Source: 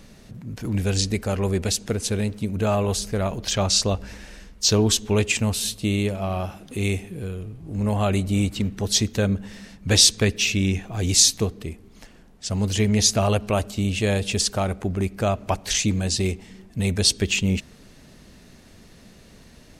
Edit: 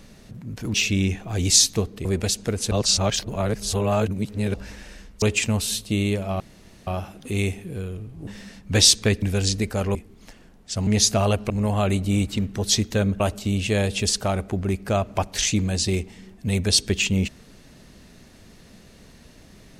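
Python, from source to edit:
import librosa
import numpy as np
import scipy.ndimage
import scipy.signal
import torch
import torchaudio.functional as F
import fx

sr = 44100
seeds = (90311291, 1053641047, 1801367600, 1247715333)

y = fx.edit(x, sr, fx.swap(start_s=0.74, length_s=0.73, other_s=10.38, other_length_s=1.31),
    fx.reverse_span(start_s=2.13, length_s=1.83),
    fx.cut(start_s=4.64, length_s=0.51),
    fx.insert_room_tone(at_s=6.33, length_s=0.47),
    fx.move(start_s=7.73, length_s=1.7, to_s=13.52),
    fx.cut(start_s=12.61, length_s=0.28), tone=tone)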